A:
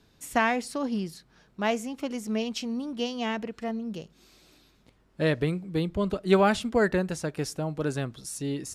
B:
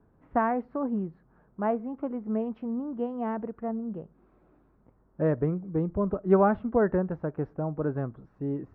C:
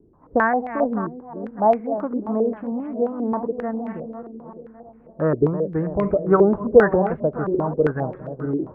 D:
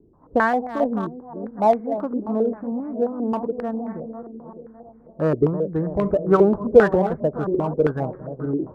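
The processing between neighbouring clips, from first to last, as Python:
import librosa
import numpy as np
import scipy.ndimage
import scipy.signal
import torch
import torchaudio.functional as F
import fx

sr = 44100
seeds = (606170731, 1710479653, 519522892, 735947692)

y1 = scipy.signal.sosfilt(scipy.signal.butter(4, 1300.0, 'lowpass', fs=sr, output='sos'), x)
y2 = fx.reverse_delay_fb(y1, sr, ms=302, feedback_pct=58, wet_db=-10)
y2 = fx.filter_held_lowpass(y2, sr, hz=7.5, low_hz=370.0, high_hz=2200.0)
y2 = F.gain(torch.from_numpy(y2), 3.5).numpy()
y3 = fx.wiener(y2, sr, points=15)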